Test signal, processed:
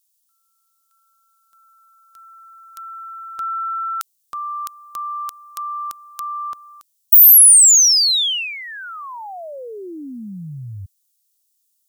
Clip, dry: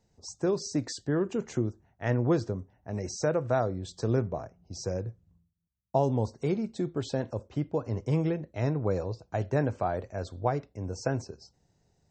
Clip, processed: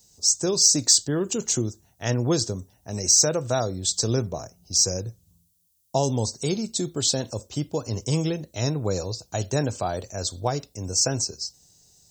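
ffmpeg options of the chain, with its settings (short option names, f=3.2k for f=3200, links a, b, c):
-af "bass=f=250:g=1,treble=f=4k:g=10,aexciter=amount=2.9:drive=7.9:freq=2.9k,volume=2dB"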